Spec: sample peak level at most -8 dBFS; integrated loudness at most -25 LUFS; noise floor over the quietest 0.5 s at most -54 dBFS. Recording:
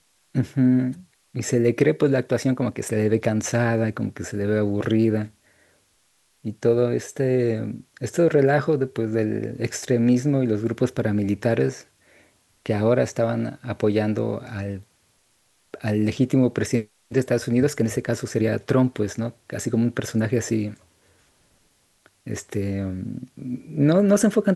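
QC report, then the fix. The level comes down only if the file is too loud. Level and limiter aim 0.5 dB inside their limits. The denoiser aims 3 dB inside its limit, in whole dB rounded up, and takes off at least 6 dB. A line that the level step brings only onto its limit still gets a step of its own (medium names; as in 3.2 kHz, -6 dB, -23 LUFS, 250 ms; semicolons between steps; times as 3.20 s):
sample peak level -5.0 dBFS: fail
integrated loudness -23.0 LUFS: fail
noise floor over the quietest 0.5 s -64 dBFS: pass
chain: trim -2.5 dB; peak limiter -8.5 dBFS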